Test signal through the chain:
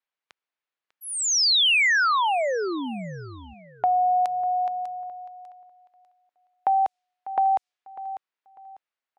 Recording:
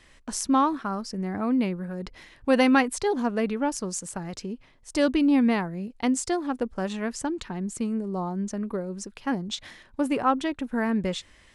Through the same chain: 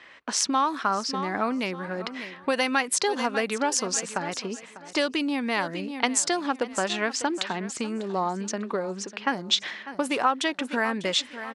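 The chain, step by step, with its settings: level-controlled noise filter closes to 2.1 kHz, open at -19.5 dBFS; treble shelf 3.4 kHz +8.5 dB; feedback delay 597 ms, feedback 27%, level -17 dB; compression 12:1, threshold -26 dBFS; frequency weighting A; trim +8.5 dB

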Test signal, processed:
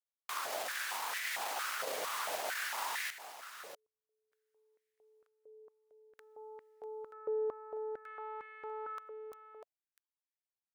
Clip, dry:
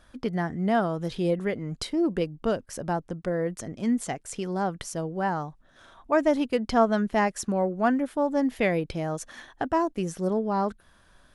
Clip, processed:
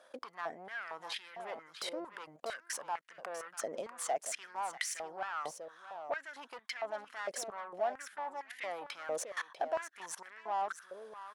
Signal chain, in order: peak limiter -21.5 dBFS; valve stage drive 28 dB, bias 0.3; level held to a coarse grid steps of 23 dB; delay 645 ms -11 dB; step-sequenced high-pass 4.4 Hz 540–1900 Hz; trim +6.5 dB

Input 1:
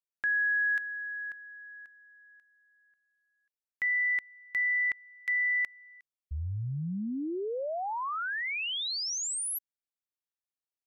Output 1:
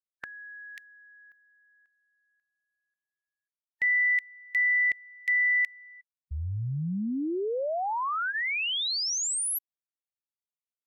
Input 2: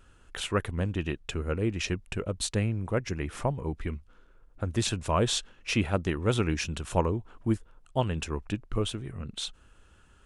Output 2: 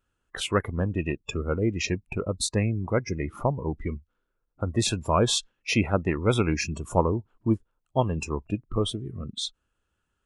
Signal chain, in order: spectral noise reduction 21 dB; bass shelf 62 Hz -6.5 dB; trim +4 dB

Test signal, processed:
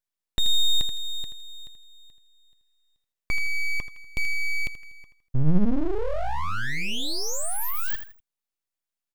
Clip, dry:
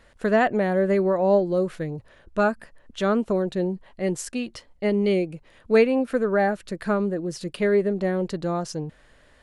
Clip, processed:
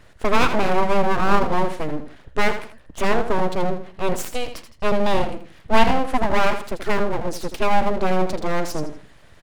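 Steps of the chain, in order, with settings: peaking EQ 85 Hz +11 dB 1.4 oct; on a send: feedback delay 81 ms, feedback 31%, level -9.5 dB; on the sum: full-wave rectifier; trim +4.5 dB

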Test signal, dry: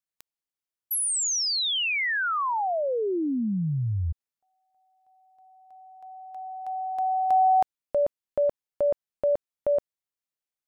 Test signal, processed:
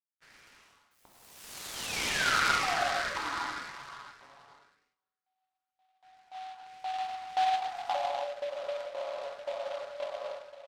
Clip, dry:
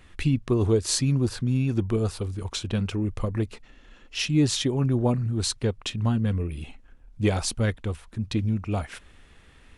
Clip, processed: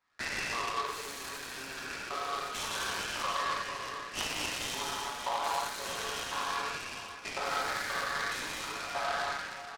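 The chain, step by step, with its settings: spectral sustain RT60 2.41 s; high-pass 540 Hz 6 dB/octave; gate with hold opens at -45 dBFS, closes at -50 dBFS, hold 44 ms, range -20 dB; comb 7.1 ms, depth 71%; dynamic bell 2.3 kHz, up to -5 dB, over -37 dBFS, Q 1.3; compression 12:1, threshold -24 dBFS; LFO high-pass saw up 1.9 Hz 950–3100 Hz; tape spacing loss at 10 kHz 39 dB; gated-style reverb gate 330 ms flat, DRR -5 dB; delay time shaken by noise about 2.4 kHz, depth 0.049 ms

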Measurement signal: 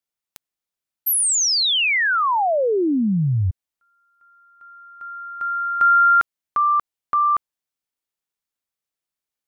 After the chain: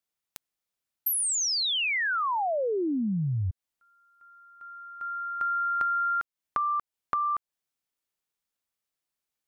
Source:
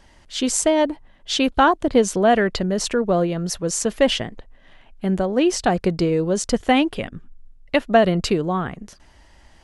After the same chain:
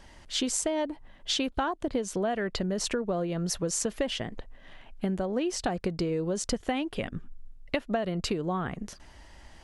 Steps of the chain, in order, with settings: compression 10:1, threshold -26 dBFS

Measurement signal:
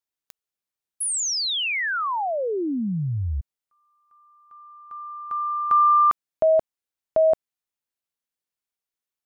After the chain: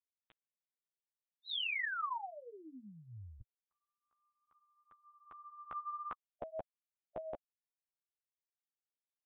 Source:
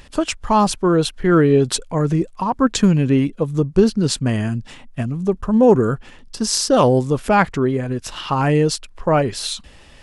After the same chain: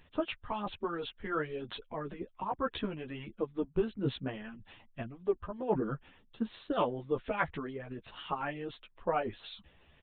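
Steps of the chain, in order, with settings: harmonic-percussive split harmonic -15 dB; chorus voices 2, 0.6 Hz, delay 12 ms, depth 3.4 ms; resampled via 8 kHz; trim -9 dB

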